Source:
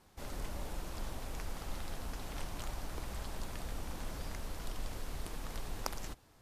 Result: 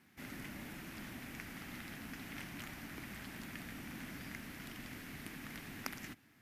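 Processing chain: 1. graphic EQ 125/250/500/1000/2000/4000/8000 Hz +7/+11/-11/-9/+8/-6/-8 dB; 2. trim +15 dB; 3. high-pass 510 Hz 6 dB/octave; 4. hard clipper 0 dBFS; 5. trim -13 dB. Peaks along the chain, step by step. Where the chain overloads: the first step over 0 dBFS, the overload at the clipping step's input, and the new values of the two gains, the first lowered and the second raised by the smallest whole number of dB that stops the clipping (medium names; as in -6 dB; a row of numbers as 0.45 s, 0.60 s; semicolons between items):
-17.0 dBFS, -2.0 dBFS, -5.0 dBFS, -5.0 dBFS, -18.0 dBFS; nothing clips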